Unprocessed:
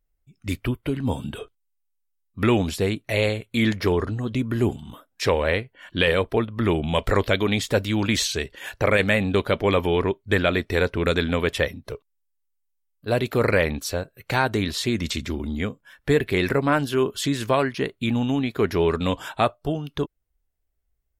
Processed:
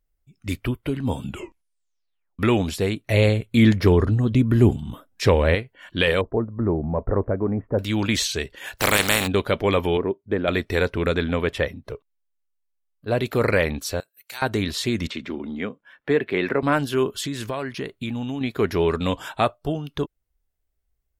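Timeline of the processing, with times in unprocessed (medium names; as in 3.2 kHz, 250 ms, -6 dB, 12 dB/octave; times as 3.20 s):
1.22 s: tape stop 1.17 s
3.10–5.55 s: bass shelf 320 Hz +9.5 dB
6.21–7.79 s: Gaussian low-pass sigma 8 samples
8.77–9.26 s: spectral contrast reduction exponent 0.36
9.97–10.48 s: band-pass filter 340 Hz, Q 0.66
11.06–13.20 s: treble shelf 3.7 kHz -9 dB
14.00–14.42 s: differentiator
15.07–16.63 s: three-band isolator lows -21 dB, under 160 Hz, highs -19 dB, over 3.5 kHz
17.20–18.41 s: compression 3:1, threshold -26 dBFS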